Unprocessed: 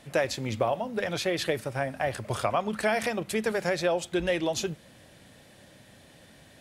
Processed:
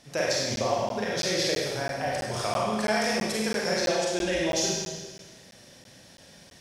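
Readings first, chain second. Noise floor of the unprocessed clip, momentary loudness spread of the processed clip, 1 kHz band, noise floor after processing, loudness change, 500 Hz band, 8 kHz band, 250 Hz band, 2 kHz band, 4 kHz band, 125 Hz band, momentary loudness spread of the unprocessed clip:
-55 dBFS, 5 LU, +1.0 dB, -52 dBFS, +2.0 dB, +0.5 dB, +8.5 dB, +1.5 dB, +1.5 dB, +6.5 dB, -0.5 dB, 4 LU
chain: peaking EQ 5.5 kHz +13.5 dB 0.53 oct; Schroeder reverb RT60 1.4 s, combs from 33 ms, DRR -4.5 dB; crackling interface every 0.33 s, samples 512, zero, from 0.56 s; trim -5 dB

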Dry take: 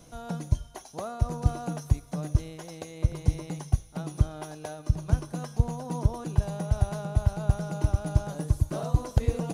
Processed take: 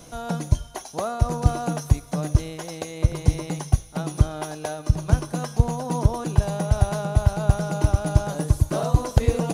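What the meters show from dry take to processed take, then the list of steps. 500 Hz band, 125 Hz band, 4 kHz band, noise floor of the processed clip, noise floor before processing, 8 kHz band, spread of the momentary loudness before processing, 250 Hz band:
+8.0 dB, +5.0 dB, +9.0 dB, -43 dBFS, -50 dBFS, +9.0 dB, 10 LU, +6.0 dB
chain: bass shelf 260 Hz -4.5 dB; trim +9 dB

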